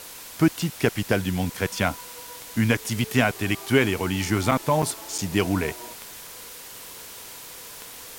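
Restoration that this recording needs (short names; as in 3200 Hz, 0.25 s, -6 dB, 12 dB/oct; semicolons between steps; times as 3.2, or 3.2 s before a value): de-click; interpolate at 4.51/4.82/5.18, 6 ms; noise print and reduce 28 dB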